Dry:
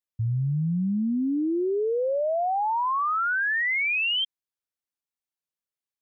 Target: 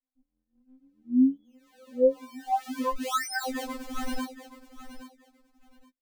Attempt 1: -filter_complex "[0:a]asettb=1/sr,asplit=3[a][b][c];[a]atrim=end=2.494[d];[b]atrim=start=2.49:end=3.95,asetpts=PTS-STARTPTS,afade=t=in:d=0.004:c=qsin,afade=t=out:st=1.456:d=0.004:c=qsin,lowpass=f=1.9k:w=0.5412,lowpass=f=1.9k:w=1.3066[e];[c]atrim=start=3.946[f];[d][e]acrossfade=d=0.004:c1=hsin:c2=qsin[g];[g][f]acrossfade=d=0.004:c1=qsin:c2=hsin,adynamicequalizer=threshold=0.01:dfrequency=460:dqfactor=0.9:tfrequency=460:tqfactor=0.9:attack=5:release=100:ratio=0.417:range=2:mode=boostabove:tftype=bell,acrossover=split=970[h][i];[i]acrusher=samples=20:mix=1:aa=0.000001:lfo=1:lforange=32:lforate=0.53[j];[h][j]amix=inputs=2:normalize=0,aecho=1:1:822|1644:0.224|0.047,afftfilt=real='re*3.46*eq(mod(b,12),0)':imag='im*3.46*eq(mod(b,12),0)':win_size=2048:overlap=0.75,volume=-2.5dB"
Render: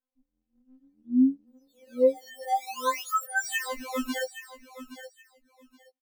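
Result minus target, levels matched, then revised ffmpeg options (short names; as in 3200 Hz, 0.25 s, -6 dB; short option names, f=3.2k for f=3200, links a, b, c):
decimation with a swept rate: distortion -20 dB
-filter_complex "[0:a]asettb=1/sr,asplit=3[a][b][c];[a]atrim=end=2.494[d];[b]atrim=start=2.49:end=3.95,asetpts=PTS-STARTPTS,afade=t=in:d=0.004:c=qsin,afade=t=out:st=1.456:d=0.004:c=qsin,lowpass=f=1.9k:w=0.5412,lowpass=f=1.9k:w=1.3066[e];[c]atrim=start=3.946[f];[d][e]acrossfade=d=0.004:c1=hsin:c2=qsin[g];[g][f]acrossfade=d=0.004:c1=qsin:c2=hsin,adynamicequalizer=threshold=0.01:dfrequency=460:dqfactor=0.9:tfrequency=460:tqfactor=0.9:attack=5:release=100:ratio=0.417:range=2:mode=boostabove:tftype=bell,acrossover=split=970[h][i];[i]acrusher=samples=59:mix=1:aa=0.000001:lfo=1:lforange=94.4:lforate=0.53[j];[h][j]amix=inputs=2:normalize=0,aecho=1:1:822|1644:0.224|0.047,afftfilt=real='re*3.46*eq(mod(b,12),0)':imag='im*3.46*eq(mod(b,12),0)':win_size=2048:overlap=0.75,volume=-2.5dB"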